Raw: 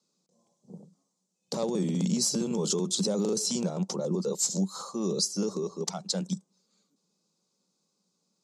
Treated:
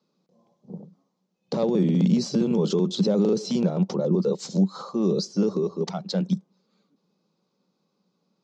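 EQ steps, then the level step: dynamic EQ 1000 Hz, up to -4 dB, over -49 dBFS, Q 1.2; air absorption 220 m; high shelf 9400 Hz -11 dB; +8.0 dB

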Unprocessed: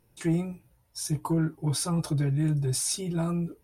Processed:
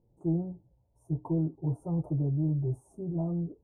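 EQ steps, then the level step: inverse Chebyshev band-stop 1600–5100 Hz, stop band 50 dB; air absorption 230 m; high shelf 11000 Hz -7 dB; -2.5 dB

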